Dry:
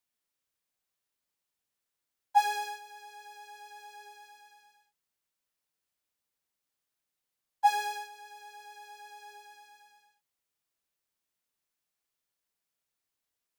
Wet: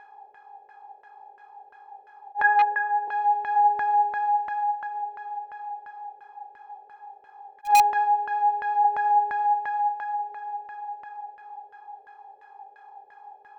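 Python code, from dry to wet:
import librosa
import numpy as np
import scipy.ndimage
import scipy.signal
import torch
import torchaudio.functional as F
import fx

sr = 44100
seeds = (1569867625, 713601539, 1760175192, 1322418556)

p1 = fx.bin_compress(x, sr, power=0.4)
p2 = p1 + fx.echo_feedback(p1, sr, ms=1199, feedback_pct=23, wet_db=-11.5, dry=0)
p3 = fx.filter_lfo_lowpass(p2, sr, shape='saw_down', hz=2.9, low_hz=510.0, high_hz=1700.0, q=3.5)
p4 = (np.mod(10.0 ** (11.0 / 20.0) * p3 + 1.0, 2.0) - 1.0) / 10.0 ** (11.0 / 20.0)
p5 = p3 + (p4 * 10.0 ** (-8.0 / 20.0))
p6 = fx.cabinet(p5, sr, low_hz=380.0, low_slope=24, high_hz=2700.0, hz=(520.0, 730.0, 1100.0, 1700.0, 2600.0), db=(6, -9, 5, 10, -4), at=(2.42, 3.08))
p7 = fx.attack_slew(p6, sr, db_per_s=350.0)
y = p7 * 10.0 ** (-1.5 / 20.0)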